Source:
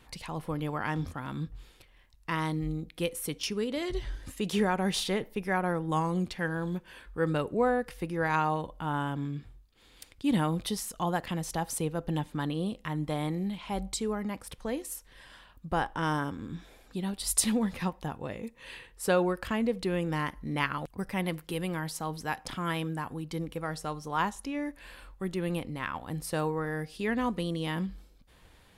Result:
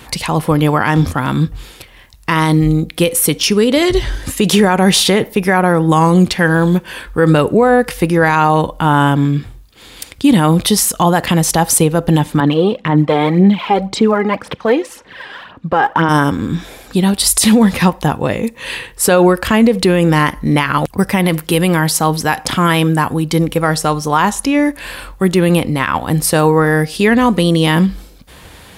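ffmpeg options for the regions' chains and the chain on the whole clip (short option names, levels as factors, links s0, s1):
-filter_complex "[0:a]asettb=1/sr,asplit=3[s0][s1][s2];[s0]atrim=end=12.404[s3];[s1]atrim=start=12.4:end=16.09,asetpts=PTS-STARTPTS,afade=t=in:d=0.004:c=qsin,afade=t=out:st=3.686:d=0.004:c=qsin,highpass=180,lowpass=2800,aphaser=in_gain=1:out_gain=1:delay=2.5:decay=0.56:speed=1.9:type=sinusoidal[s4];[s2]atrim=start=16.086[s5];[s3][s4]acrossfade=d=0.004:c1=hsin:c2=qsin[s6];[s6][s5]acrossfade=d=0.004:c1=qsin:c2=hsin,highpass=54,highshelf=f=6500:g=4,alimiter=level_in=12.6:limit=0.891:release=50:level=0:latency=1,volume=0.891"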